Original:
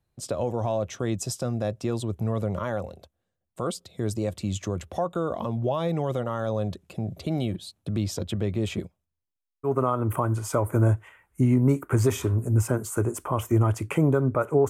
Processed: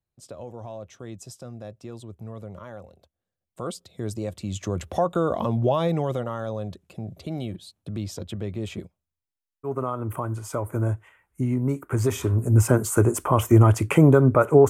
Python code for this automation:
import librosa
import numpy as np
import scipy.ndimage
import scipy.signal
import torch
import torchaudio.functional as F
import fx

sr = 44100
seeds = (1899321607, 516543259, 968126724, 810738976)

y = fx.gain(x, sr, db=fx.line((2.84, -11.0), (3.68, -2.5), (4.47, -2.5), (4.88, 4.5), (5.74, 4.5), (6.61, -4.0), (11.78, -4.0), (12.74, 6.5)))